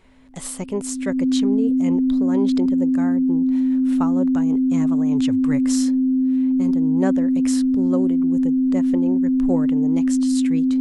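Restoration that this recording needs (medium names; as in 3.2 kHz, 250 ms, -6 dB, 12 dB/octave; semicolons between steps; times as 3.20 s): band-stop 260 Hz, Q 30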